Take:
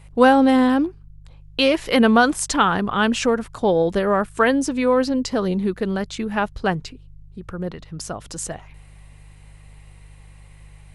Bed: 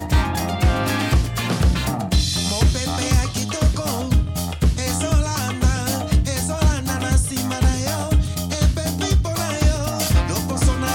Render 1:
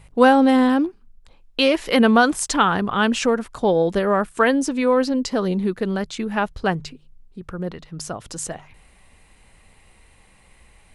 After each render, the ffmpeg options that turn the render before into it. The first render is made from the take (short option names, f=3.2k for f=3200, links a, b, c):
-af "bandreject=f=50:t=h:w=4,bandreject=f=100:t=h:w=4,bandreject=f=150:t=h:w=4"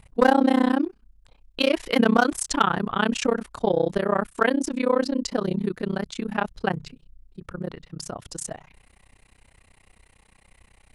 -af "volume=7dB,asoftclip=hard,volume=-7dB,tremolo=f=31:d=1"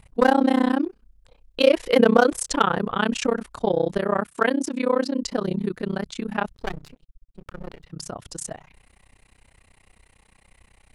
-filter_complex "[0:a]asettb=1/sr,asplit=3[a][b][c];[a]atrim=end=0.854[d];[b]atrim=start=0.85:end=2.96,asetpts=PTS-STARTPTS,afade=t=in:d=0.004:c=qsin,afade=t=out:st=2.106:d=0.004:c=qsin,equalizer=f=500:w=3.5:g=9.5[e];[c]atrim=start=2.956[f];[d][e]acrossfade=d=0.004:c1=hsin:c2=qsin[g];[g][f]acrossfade=d=0.004:c1=qsin:c2=hsin,asettb=1/sr,asplit=3[h][i][j];[h]atrim=end=4.194[k];[i]atrim=start=4.19:end=5.23,asetpts=PTS-STARTPTS,afade=t=in:d=0.004:c=qsin,afade=t=out:st=1.036:d=0.004:c=qsin,highpass=94[l];[j]atrim=start=5.226[m];[k][l]acrossfade=d=0.004:c1=hsin:c2=qsin[n];[n][m]acrossfade=d=0.004:c1=qsin:c2=hsin,asettb=1/sr,asplit=3[o][p][q];[o]atrim=end=6.554[r];[p]atrim=start=6.55:end=7.84,asetpts=PTS-STARTPTS,afade=t=in:d=0.004:c=qsin,afade=t=out:st=1.286:d=0.004:c=qsin,aeval=exprs='max(val(0),0)':c=same[s];[q]atrim=start=7.836[t];[r][s]acrossfade=d=0.004:c1=hsin:c2=qsin[u];[u][t]acrossfade=d=0.004:c1=qsin:c2=hsin"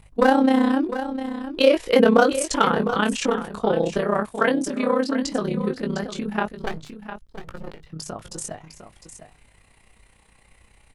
-filter_complex "[0:a]asplit=2[a][b];[b]adelay=19,volume=-6.5dB[c];[a][c]amix=inputs=2:normalize=0,aecho=1:1:705:0.282"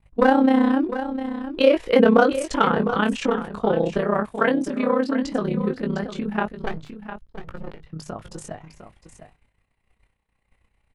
-af "agate=range=-33dB:threshold=-44dB:ratio=3:detection=peak,bass=f=250:g=2,treble=f=4k:g=-10"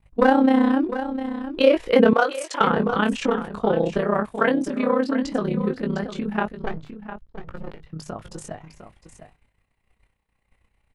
-filter_complex "[0:a]asettb=1/sr,asplit=3[a][b][c];[a]atrim=end=2.134[d];[b]atrim=start=2.13:end=2.61,asetpts=PTS-STARTPTS,afade=t=in:d=0.004:c=qsin,afade=t=out:st=0.476:d=0.004:c=qsin,highpass=630[e];[c]atrim=start=2.606[f];[d][e]acrossfade=d=0.004:c1=hsin:c2=qsin[g];[g][f]acrossfade=d=0.004:c1=qsin:c2=hsin,asettb=1/sr,asplit=3[h][i][j];[h]atrim=end=6.584[k];[i]atrim=start=6.58:end=7.53,asetpts=PTS-STARTPTS,afade=t=in:d=0.004:c=qsin,afade=t=out:st=0.946:d=0.004:c=qsin,highshelf=f=3.3k:g=-8.5[l];[j]atrim=start=7.526[m];[k][l]acrossfade=d=0.004:c1=hsin:c2=qsin[n];[n][m]acrossfade=d=0.004:c1=qsin:c2=hsin"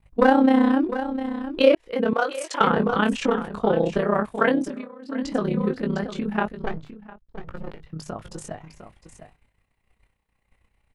-filter_complex "[0:a]asplit=5[a][b][c][d][e];[a]atrim=end=1.75,asetpts=PTS-STARTPTS,afade=t=out:st=1.746:d=0.004:c=hsin[f];[b]atrim=start=1.75:end=4.88,asetpts=PTS-STARTPTS,afade=t=in:d=0.71,afade=t=out:st=2.83:d=0.3:silence=0.0749894[g];[c]atrim=start=4.88:end=5.01,asetpts=PTS-STARTPTS,volume=-22.5dB[h];[d]atrim=start=5.01:end=7.28,asetpts=PTS-STARTPTS,afade=t=in:d=0.3:silence=0.0749894,afade=t=out:st=1.75:d=0.52:silence=0.0841395[i];[e]atrim=start=7.28,asetpts=PTS-STARTPTS,afade=t=in:d=0.004:c=hsin:silence=0.0841395[j];[f][g][h][i][j]concat=n=5:v=0:a=1"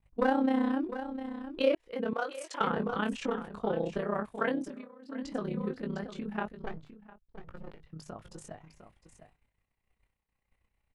-af "volume=-10.5dB"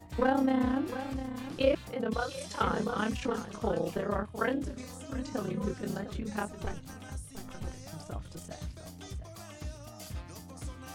-filter_complex "[1:a]volume=-24dB[a];[0:a][a]amix=inputs=2:normalize=0"